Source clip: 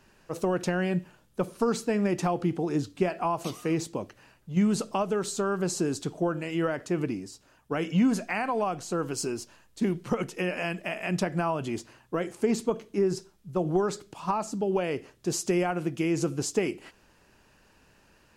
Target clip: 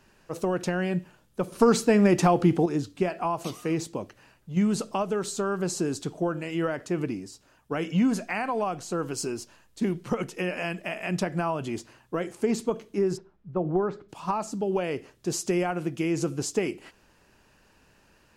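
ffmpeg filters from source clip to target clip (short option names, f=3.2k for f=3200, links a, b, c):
-filter_complex "[0:a]asettb=1/sr,asplit=3[a][b][c];[a]atrim=end=1.524[d];[b]atrim=start=1.52:end=2.66,asetpts=PTS-STARTPTS,afade=t=in:d=0.004:c=qsin,afade=t=out:st=1.136:d=0.004:c=qsin,acontrast=75[e];[c]atrim=start=2.656[f];[d][e]acrossfade=d=0.004:c1=hsin:c2=qsin[g];[g][f]acrossfade=d=0.004:c1=qsin:c2=hsin,asplit=3[h][i][j];[h]afade=t=out:st=13.16:d=0.02[k];[i]lowpass=1.7k,afade=t=in:st=13.16:d=0.02,afade=t=out:st=14.08:d=0.02[l];[j]afade=t=in:st=14.08:d=0.02[m];[k][l][m]amix=inputs=3:normalize=0"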